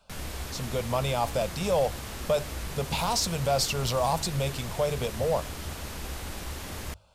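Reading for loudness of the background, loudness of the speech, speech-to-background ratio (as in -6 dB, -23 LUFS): -37.5 LUFS, -29.0 LUFS, 8.5 dB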